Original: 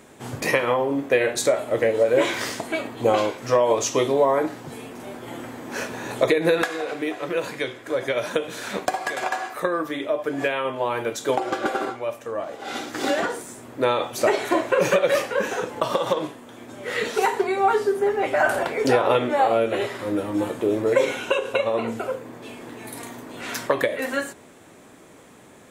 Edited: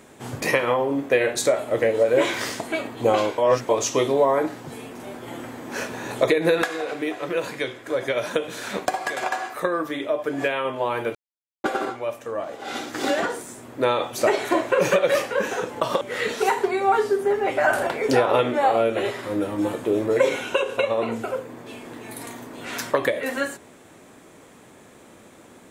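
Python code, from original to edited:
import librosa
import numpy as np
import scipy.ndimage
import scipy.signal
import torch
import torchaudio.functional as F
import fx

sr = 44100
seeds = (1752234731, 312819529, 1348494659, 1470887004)

y = fx.edit(x, sr, fx.reverse_span(start_s=3.38, length_s=0.31),
    fx.silence(start_s=11.15, length_s=0.49),
    fx.cut(start_s=16.01, length_s=0.76), tone=tone)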